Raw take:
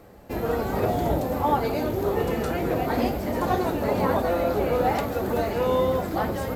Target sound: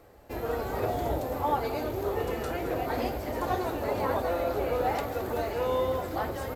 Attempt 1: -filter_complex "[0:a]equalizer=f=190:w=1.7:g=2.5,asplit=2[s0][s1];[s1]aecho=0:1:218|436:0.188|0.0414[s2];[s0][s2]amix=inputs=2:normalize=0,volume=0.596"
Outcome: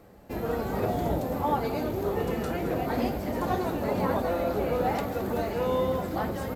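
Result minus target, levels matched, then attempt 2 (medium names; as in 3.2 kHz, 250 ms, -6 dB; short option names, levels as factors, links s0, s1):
250 Hz band +4.0 dB
-filter_complex "[0:a]equalizer=f=190:w=1.7:g=-9.5,asplit=2[s0][s1];[s1]aecho=0:1:218|436:0.188|0.0414[s2];[s0][s2]amix=inputs=2:normalize=0,volume=0.596"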